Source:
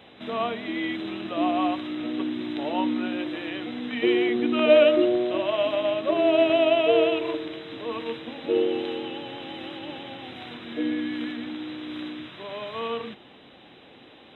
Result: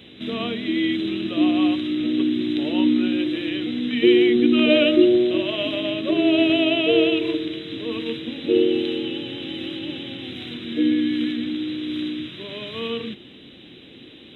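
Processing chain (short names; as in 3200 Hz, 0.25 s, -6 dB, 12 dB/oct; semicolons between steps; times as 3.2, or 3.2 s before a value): EQ curve 350 Hz 0 dB, 810 Hz -18 dB, 3200 Hz 0 dB; gain +8 dB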